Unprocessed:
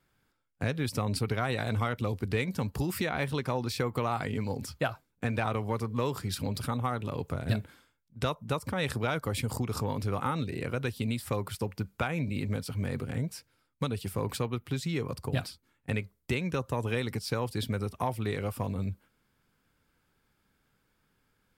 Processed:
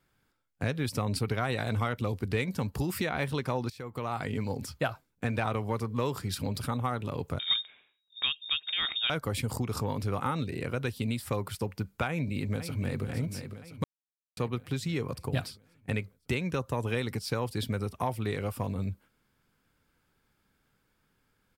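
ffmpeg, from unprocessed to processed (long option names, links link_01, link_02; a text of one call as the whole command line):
ffmpeg -i in.wav -filter_complex "[0:a]asettb=1/sr,asplit=3[link_01][link_02][link_03];[link_01]atrim=end=7.394[link_04];[link_02]atrim=start=7.39:end=9.1,asetpts=PTS-STARTPTS,afade=type=in:duration=0.004:curve=qsin,afade=type=out:start_time=1.706:duration=0.004:curve=qsin,lowpass=frequency=3200:width_type=q:width=0.5098,lowpass=frequency=3200:width_type=q:width=0.6013,lowpass=frequency=3200:width_type=q:width=0.9,lowpass=frequency=3200:width_type=q:width=2.563,afreqshift=-3800[link_05];[link_03]atrim=start=9.096[link_06];[link_04][link_05]acrossfade=duration=0.004:curve1=hsin:curve2=qsin[link_07];[link_07][link_06]acrossfade=duration=0.004:curve1=qsin:curve2=hsin,asplit=2[link_08][link_09];[link_09]afade=type=in:start_time=12.08:duration=0.01,afade=type=out:start_time=13.02:duration=0.01,aecho=0:1:510|1020|1530|2040|2550|3060|3570:0.354813|0.212888|0.127733|0.0766397|0.0459838|0.0275903|0.0165542[link_10];[link_08][link_10]amix=inputs=2:normalize=0,asplit=4[link_11][link_12][link_13][link_14];[link_11]atrim=end=3.7,asetpts=PTS-STARTPTS,afade=type=out:start_time=3.696:duration=0.004:curve=hsin:silence=0.112202[link_15];[link_12]atrim=start=3.7:end=13.84,asetpts=PTS-STARTPTS,afade=type=in:duration=0.61:silence=0.112202,afade=type=out:start_time=10.136:duration=0.004:curve=hsin[link_16];[link_13]atrim=start=13.84:end=14.37,asetpts=PTS-STARTPTS,volume=0[link_17];[link_14]atrim=start=14.37,asetpts=PTS-STARTPTS,afade=type=in:duration=0.004:curve=hsin[link_18];[link_15][link_16][link_17][link_18]concat=n=4:v=0:a=1" out.wav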